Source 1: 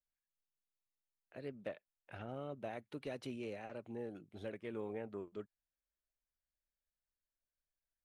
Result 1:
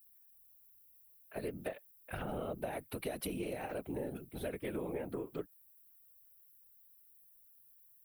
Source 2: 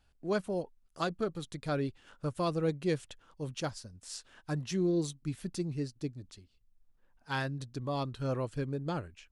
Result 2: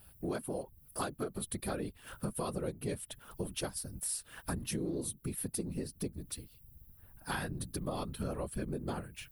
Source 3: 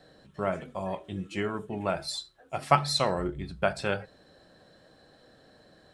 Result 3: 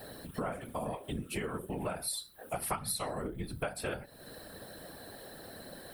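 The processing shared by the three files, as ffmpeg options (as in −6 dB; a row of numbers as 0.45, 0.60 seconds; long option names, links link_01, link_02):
-af "afftfilt=real='hypot(re,im)*cos(2*PI*random(0))':imag='hypot(re,im)*sin(2*PI*random(1))':win_size=512:overlap=0.75,aexciter=amount=13.3:drive=7:freq=9700,acompressor=threshold=-50dB:ratio=5,volume=14.5dB"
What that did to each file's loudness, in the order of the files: +5.0, −3.5, −8.5 LU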